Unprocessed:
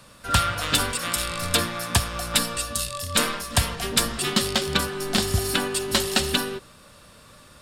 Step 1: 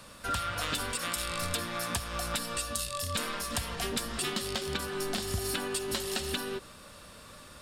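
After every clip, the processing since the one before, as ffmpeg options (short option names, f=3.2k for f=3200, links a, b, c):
-af "equalizer=f=130:t=o:w=0.71:g=-4,alimiter=limit=-13dB:level=0:latency=1:release=294,acompressor=threshold=-31dB:ratio=3"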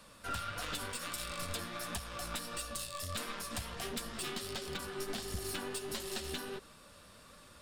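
-af "aeval=exprs='0.158*(cos(1*acos(clip(val(0)/0.158,-1,1)))-cos(1*PI/2))+0.0282*(cos(4*acos(clip(val(0)/0.158,-1,1)))-cos(4*PI/2))':c=same,flanger=delay=3.4:depth=9.9:regen=-40:speed=1.5:shape=triangular,asoftclip=type=hard:threshold=-26dB,volume=-3dB"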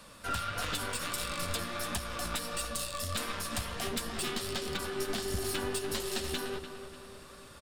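-filter_complex "[0:a]asplit=2[a][b];[b]adelay=296,lowpass=f=2.7k:p=1,volume=-9dB,asplit=2[c][d];[d]adelay=296,lowpass=f=2.7k:p=1,volume=0.53,asplit=2[e][f];[f]adelay=296,lowpass=f=2.7k:p=1,volume=0.53,asplit=2[g][h];[h]adelay=296,lowpass=f=2.7k:p=1,volume=0.53,asplit=2[i][j];[j]adelay=296,lowpass=f=2.7k:p=1,volume=0.53,asplit=2[k][l];[l]adelay=296,lowpass=f=2.7k:p=1,volume=0.53[m];[a][c][e][g][i][k][m]amix=inputs=7:normalize=0,volume=4.5dB"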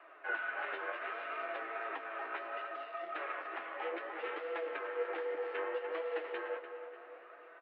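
-af "highpass=f=300:t=q:w=0.5412,highpass=f=300:t=q:w=1.307,lowpass=f=2.3k:t=q:w=0.5176,lowpass=f=2.3k:t=q:w=0.7071,lowpass=f=2.3k:t=q:w=1.932,afreqshift=100,flanger=delay=5.9:depth=6.6:regen=52:speed=0.66:shape=sinusoidal,volume=3.5dB" -ar 32000 -c:a libmp3lame -b:a 56k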